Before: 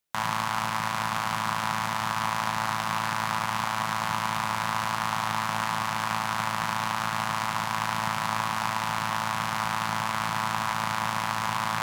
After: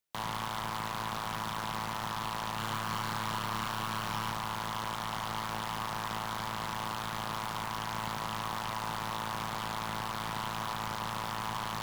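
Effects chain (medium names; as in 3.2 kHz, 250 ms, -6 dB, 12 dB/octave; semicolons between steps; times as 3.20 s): wavefolder -22 dBFS; 2.55–4.32 s: doubling 28 ms -4 dB; trim -4.5 dB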